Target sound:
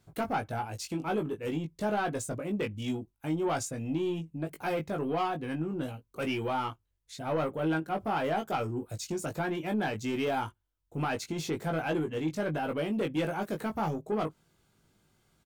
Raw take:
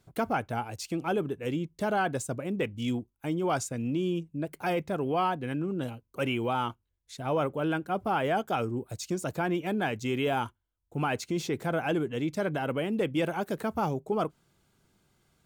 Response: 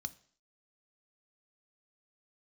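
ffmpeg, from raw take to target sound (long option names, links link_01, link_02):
-filter_complex "[0:a]asoftclip=type=tanh:threshold=-23.5dB,asplit=2[link_01][link_02];[link_02]adelay=19,volume=-4.5dB[link_03];[link_01][link_03]amix=inputs=2:normalize=0,volume=-1.5dB"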